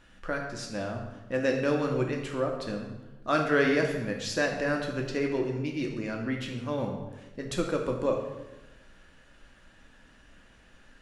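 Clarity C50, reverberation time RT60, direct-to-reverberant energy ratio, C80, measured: 5.0 dB, 1.1 s, 0.5 dB, 7.0 dB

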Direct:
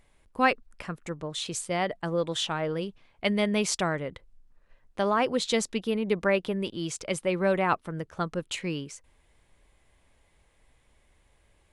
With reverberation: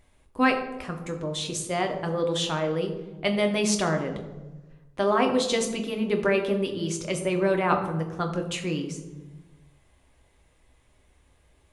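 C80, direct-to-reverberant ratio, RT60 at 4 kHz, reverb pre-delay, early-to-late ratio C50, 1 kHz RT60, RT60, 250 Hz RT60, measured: 10.5 dB, 3.0 dB, 0.70 s, 3 ms, 8.0 dB, 1.0 s, 1.2 s, 1.6 s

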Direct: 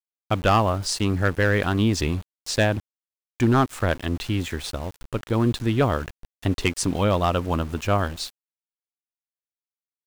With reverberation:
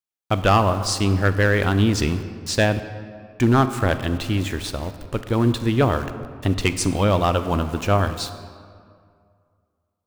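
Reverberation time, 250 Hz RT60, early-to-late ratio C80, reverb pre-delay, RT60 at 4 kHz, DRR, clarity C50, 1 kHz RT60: 2.2 s, 2.3 s, 12.0 dB, 26 ms, 1.3 s, 10.5 dB, 11.0 dB, 2.2 s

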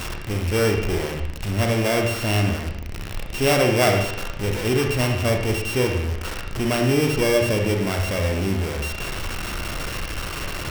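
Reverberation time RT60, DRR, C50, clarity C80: 0.75 s, 2.0 dB, 4.5 dB, 7.5 dB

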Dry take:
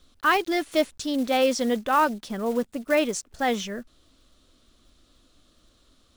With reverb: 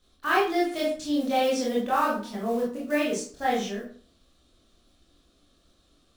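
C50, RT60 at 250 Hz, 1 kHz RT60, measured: 5.0 dB, 0.55 s, 0.45 s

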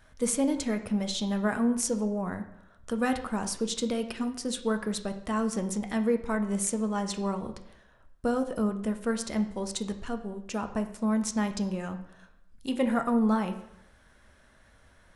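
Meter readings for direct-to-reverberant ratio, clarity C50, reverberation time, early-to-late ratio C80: 6.5 dB, 11.0 dB, 0.75 s, 13.5 dB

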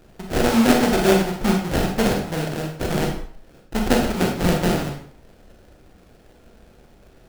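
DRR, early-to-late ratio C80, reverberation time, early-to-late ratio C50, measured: 1.0 dB, 8.5 dB, 0.55 s, 4.5 dB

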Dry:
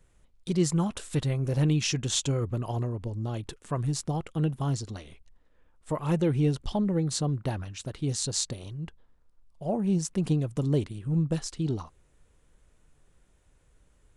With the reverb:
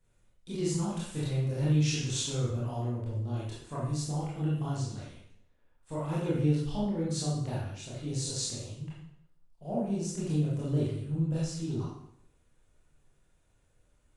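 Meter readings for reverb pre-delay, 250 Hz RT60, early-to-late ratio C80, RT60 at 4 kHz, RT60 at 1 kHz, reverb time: 21 ms, 0.75 s, 4.5 dB, 0.65 s, 0.65 s, 0.70 s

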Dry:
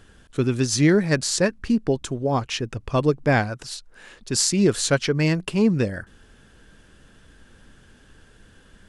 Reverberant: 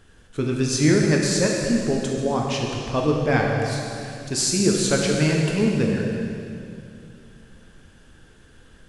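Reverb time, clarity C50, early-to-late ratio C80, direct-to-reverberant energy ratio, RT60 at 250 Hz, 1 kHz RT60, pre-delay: 2.6 s, 1.0 dB, 2.0 dB, -1.0 dB, 3.1 s, 2.5 s, 9 ms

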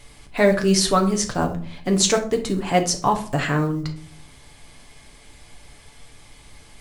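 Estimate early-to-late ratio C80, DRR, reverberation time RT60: 17.0 dB, 3.0 dB, 0.50 s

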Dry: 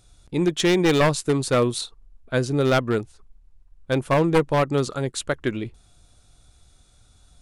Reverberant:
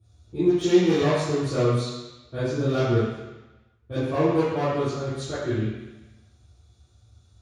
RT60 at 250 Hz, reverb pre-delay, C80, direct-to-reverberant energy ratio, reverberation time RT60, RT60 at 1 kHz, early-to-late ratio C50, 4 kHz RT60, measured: 1.0 s, 3 ms, 0.5 dB, -16.5 dB, 1.0 s, 1.1 s, -3.0 dB, 1.1 s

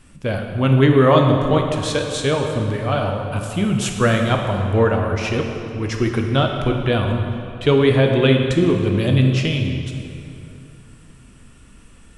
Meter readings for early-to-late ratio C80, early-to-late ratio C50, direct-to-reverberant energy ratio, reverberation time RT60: 5.0 dB, 4.0 dB, 2.5 dB, 2.8 s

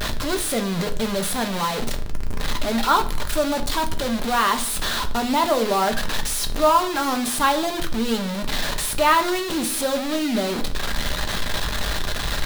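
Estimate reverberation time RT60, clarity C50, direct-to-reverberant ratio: 0.55 s, 14.0 dB, 5.0 dB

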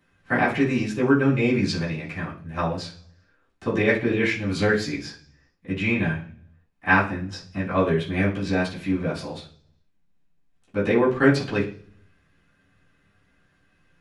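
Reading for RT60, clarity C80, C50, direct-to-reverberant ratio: 0.45 s, 14.5 dB, 9.0 dB, -11.5 dB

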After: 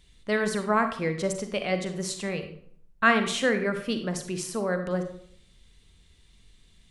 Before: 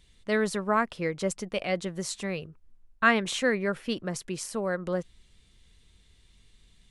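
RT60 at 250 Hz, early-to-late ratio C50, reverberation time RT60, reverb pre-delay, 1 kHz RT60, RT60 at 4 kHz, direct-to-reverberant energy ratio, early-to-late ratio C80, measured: 0.75 s, 8.5 dB, 0.60 s, 36 ms, 0.55 s, 0.45 s, 7.0 dB, 12.0 dB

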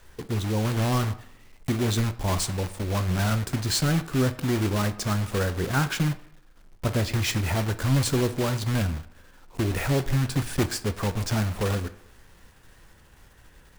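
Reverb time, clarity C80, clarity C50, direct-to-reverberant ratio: 0.75 s, 18.0 dB, 15.0 dB, 11.0 dB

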